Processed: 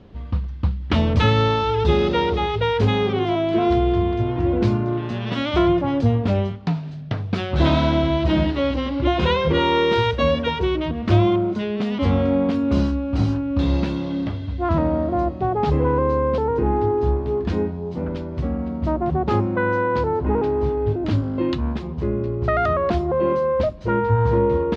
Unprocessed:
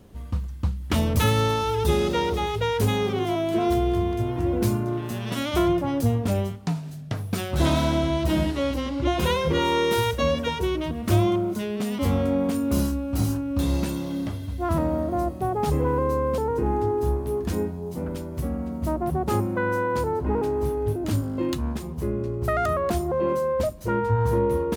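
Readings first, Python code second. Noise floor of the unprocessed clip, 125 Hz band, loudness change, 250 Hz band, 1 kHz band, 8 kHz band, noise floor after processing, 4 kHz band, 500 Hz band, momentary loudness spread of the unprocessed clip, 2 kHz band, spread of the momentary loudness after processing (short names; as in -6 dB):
-34 dBFS, +4.0 dB, +4.0 dB, +4.0 dB, +4.0 dB, under -10 dB, -30 dBFS, +3.0 dB, +4.0 dB, 8 LU, +4.0 dB, 8 LU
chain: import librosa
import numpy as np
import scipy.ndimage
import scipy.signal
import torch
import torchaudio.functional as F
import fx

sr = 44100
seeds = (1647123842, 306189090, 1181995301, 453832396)

y = scipy.signal.sosfilt(scipy.signal.butter(4, 4300.0, 'lowpass', fs=sr, output='sos'), x)
y = F.gain(torch.from_numpy(y), 4.0).numpy()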